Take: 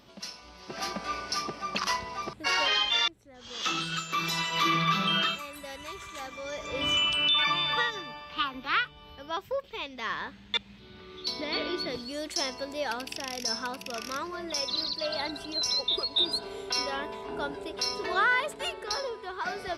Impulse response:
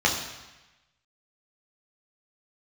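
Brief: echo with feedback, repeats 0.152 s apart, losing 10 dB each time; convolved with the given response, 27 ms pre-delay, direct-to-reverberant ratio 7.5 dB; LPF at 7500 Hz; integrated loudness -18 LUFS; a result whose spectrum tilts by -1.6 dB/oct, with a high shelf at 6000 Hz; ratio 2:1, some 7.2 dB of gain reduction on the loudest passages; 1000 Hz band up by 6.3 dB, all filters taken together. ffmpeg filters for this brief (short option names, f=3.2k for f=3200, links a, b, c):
-filter_complex "[0:a]lowpass=7.5k,equalizer=f=1k:t=o:g=7.5,highshelf=f=6k:g=6.5,acompressor=threshold=-30dB:ratio=2,aecho=1:1:152|304|456|608:0.316|0.101|0.0324|0.0104,asplit=2[a][b];[1:a]atrim=start_sample=2205,adelay=27[c];[b][c]afir=irnorm=-1:irlink=0,volume=-23dB[d];[a][d]amix=inputs=2:normalize=0,volume=11.5dB"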